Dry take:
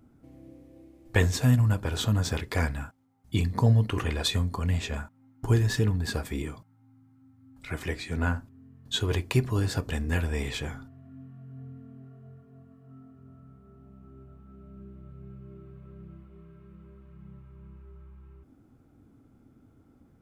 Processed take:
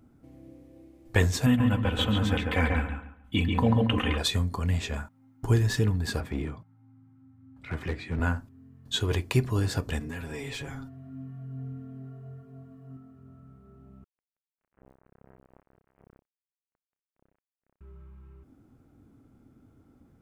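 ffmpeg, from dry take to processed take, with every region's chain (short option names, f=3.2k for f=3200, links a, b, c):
-filter_complex "[0:a]asettb=1/sr,asplit=3[a][b][c];[a]atrim=end=1.464[d];[b]atrim=start=1.46:end=4.18,asetpts=PTS-STARTPTS,afade=t=in:d=0.004:c=qsin,afade=t=out:st=2.716:d=0.004:c=qsin,highshelf=f=3.9k:t=q:w=3:g=-8,aecho=1:1:3.9:0.63,atrim=end_sample=119952,asplit=2[e][f];[f]adelay=139,lowpass=f=2.9k:p=1,volume=-3dB,asplit=2[g][h];[h]adelay=139,lowpass=f=2.9k:p=1,volume=0.28,asplit=2[i][j];[j]adelay=139,lowpass=f=2.9k:p=1,volume=0.28,asplit=2[k][l];[l]adelay=139,lowpass=f=2.9k:p=1,volume=0.28[m];[e][g][i][k][m]amix=inputs=5:normalize=0,atrim=end_sample=119952[n];[c]atrim=start=4.176[o];[d][n]acrossfade=d=0.004:c1=hsin:c2=qsin[p];[p][o]acrossfade=d=0.004:c1=qsin:c2=hsin,asettb=1/sr,asplit=3[q][r][s];[q]atrim=end=6.204[t];[r]atrim=start=6.2:end=8.2,asetpts=PTS-STARTPTS,afade=t=in:d=0.004:c=qsin,afade=t=out:st=1.996:d=0.004:c=qsin,highpass=f=65:w=0.5412,highpass=f=65:w=1.3066,bass=f=250:g=3,treble=f=4k:g=-14,aeval=exprs='clip(val(0),-1,0.0355)':c=same[u];[s]atrim=start=8.196[v];[t][u]acrossfade=d=0.004:c1=hsin:c2=qsin[w];[w][v]acrossfade=d=0.004:c1=qsin:c2=hsin,asettb=1/sr,asplit=3[x][y][z];[x]atrim=end=9.994[aa];[y]atrim=start=9.99:end=12.97,asetpts=PTS-STARTPTS,afade=t=in:d=0.004:c=qsin,afade=t=out:st=2.976:d=0.004:c=qsin,aecho=1:1:7.3:0.97,atrim=end_sample=131418,acompressor=threshold=-33dB:ratio=5:attack=3.2:release=140:knee=1:detection=peak,asoftclip=type=hard:threshold=-29dB[ab];[z]atrim=start=12.966[ac];[aa][ab]acrossfade=d=0.004:c1=hsin:c2=qsin[ad];[ad][ac]acrossfade=d=0.004:c1=qsin:c2=hsin,asettb=1/sr,asplit=3[ae][af][ag];[ae]atrim=end=14.044[ah];[af]atrim=start=14.04:end=17.81,asetpts=PTS-STARTPTS,afade=t=in:d=0.004:c=qsin,afade=t=out:st=3.766:d=0.004:c=qsin,acrusher=bits=5:mix=0:aa=0.5,asuperstop=centerf=4800:order=4:qfactor=0.9[ai];[ag]atrim=start=17.806[aj];[ah][ai]acrossfade=d=0.004:c1=hsin:c2=qsin[ak];[ak][aj]acrossfade=d=0.004:c1=qsin:c2=hsin"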